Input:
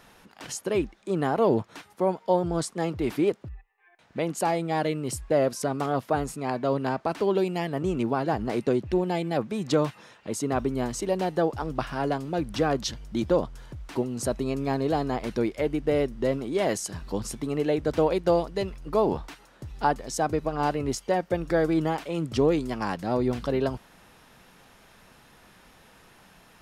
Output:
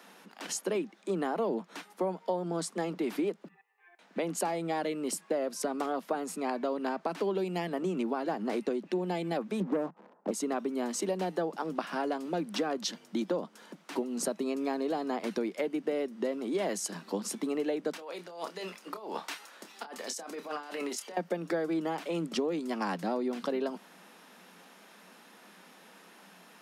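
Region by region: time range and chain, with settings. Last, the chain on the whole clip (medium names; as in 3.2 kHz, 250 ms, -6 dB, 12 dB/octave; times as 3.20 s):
9.60–10.31 s: low-pass 1 kHz 24 dB/octave + waveshaping leveller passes 2 + loudspeaker Doppler distortion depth 0.18 ms
17.93–21.17 s: high-pass 1.2 kHz 6 dB/octave + compressor with a negative ratio -40 dBFS + doubling 28 ms -10 dB
whole clip: steep high-pass 170 Hz 96 dB/octave; compression, threshold -28 dBFS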